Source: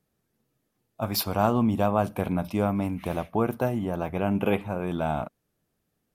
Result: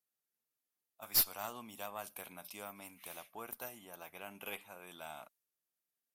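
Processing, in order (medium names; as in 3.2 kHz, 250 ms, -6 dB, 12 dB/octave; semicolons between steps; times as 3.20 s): differentiator; valve stage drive 21 dB, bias 0.55; tape noise reduction on one side only decoder only; trim +2 dB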